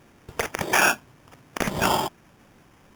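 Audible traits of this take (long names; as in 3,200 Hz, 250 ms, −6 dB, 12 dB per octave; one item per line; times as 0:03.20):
aliases and images of a low sample rate 4,100 Hz, jitter 0%
Ogg Vorbis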